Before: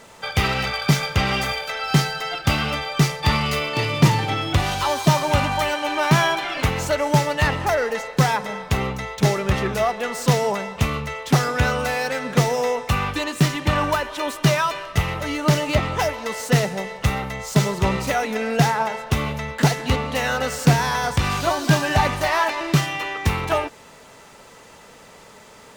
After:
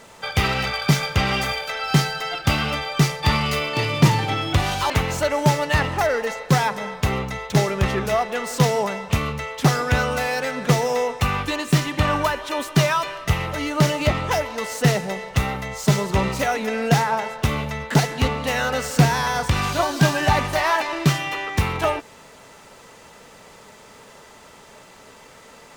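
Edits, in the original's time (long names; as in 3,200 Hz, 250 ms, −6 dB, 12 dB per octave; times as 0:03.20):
0:04.90–0:06.58: remove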